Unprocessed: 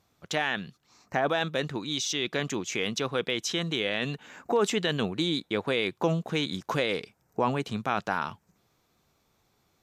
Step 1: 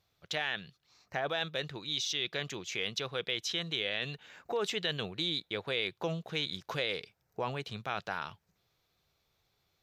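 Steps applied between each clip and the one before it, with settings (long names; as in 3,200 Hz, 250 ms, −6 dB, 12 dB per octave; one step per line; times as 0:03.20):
octave-band graphic EQ 250/1,000/4,000/8,000 Hz −11/−5/+5/−7 dB
level −4.5 dB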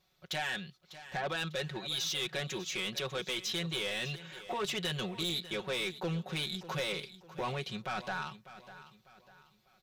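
comb filter 5.4 ms, depth 99%
soft clipping −29.5 dBFS, distortion −10 dB
repeating echo 598 ms, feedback 38%, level −15 dB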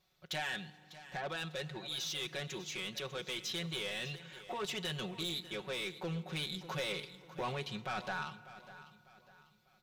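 speech leveller 2 s
feedback delay network reverb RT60 2.5 s, low-frequency decay 1.45×, high-frequency decay 0.65×, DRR 16.5 dB
level −4 dB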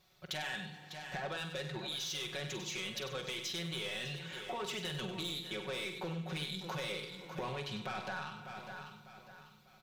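downward compressor 5 to 1, threshold −45 dBFS, peak gain reduction 10 dB
double-tracking delay 47 ms −9.5 dB
single-tap delay 97 ms −9.5 dB
level +6 dB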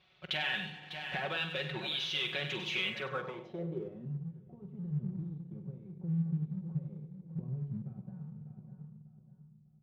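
high-pass filter 46 Hz 12 dB per octave
low-pass filter sweep 2,900 Hz → 160 Hz, 0:02.83–0:04.22
in parallel at −10 dB: dead-zone distortion −50 dBFS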